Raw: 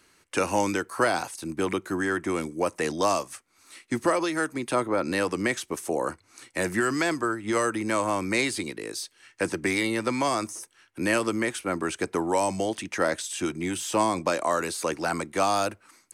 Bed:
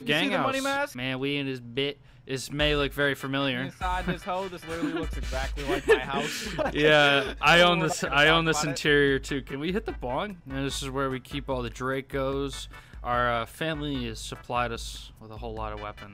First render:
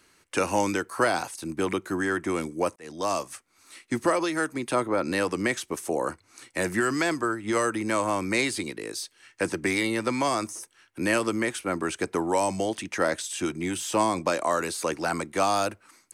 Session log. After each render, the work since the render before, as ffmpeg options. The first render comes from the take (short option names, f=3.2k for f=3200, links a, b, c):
-filter_complex "[0:a]asplit=2[a][b];[a]atrim=end=2.76,asetpts=PTS-STARTPTS,afade=t=out:st=2.756:d=0.004:c=hsin[c];[b]atrim=start=2.76,asetpts=PTS-STARTPTS,afade=t=in:d=0.49[d];[c][d]concat=n=2:v=0:a=1"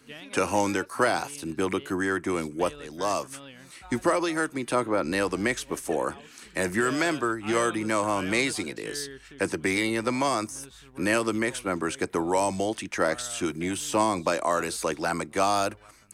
-filter_complex "[1:a]volume=-18.5dB[a];[0:a][a]amix=inputs=2:normalize=0"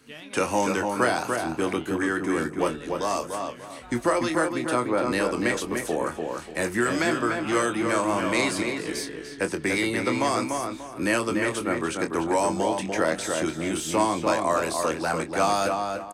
-filter_complex "[0:a]asplit=2[a][b];[b]adelay=25,volume=-8.5dB[c];[a][c]amix=inputs=2:normalize=0,asplit=2[d][e];[e]adelay=293,lowpass=f=2.4k:p=1,volume=-4dB,asplit=2[f][g];[g]adelay=293,lowpass=f=2.4k:p=1,volume=0.3,asplit=2[h][i];[i]adelay=293,lowpass=f=2.4k:p=1,volume=0.3,asplit=2[j][k];[k]adelay=293,lowpass=f=2.4k:p=1,volume=0.3[l];[d][f][h][j][l]amix=inputs=5:normalize=0"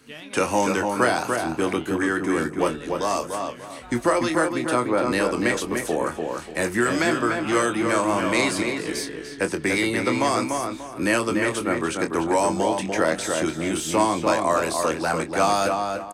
-af "volume=2.5dB"